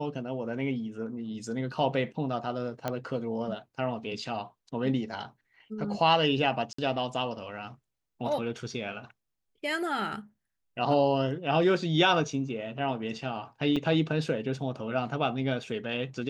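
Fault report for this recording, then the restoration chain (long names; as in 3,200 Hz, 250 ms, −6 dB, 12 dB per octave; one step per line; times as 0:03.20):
0:02.88: click −16 dBFS
0:06.73–0:06.78: drop-out 54 ms
0:13.76–0:13.77: drop-out 5.9 ms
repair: click removal
repair the gap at 0:06.73, 54 ms
repair the gap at 0:13.76, 5.9 ms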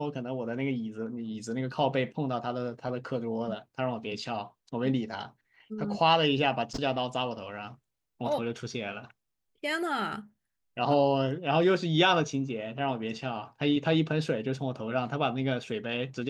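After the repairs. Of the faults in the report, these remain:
none of them is left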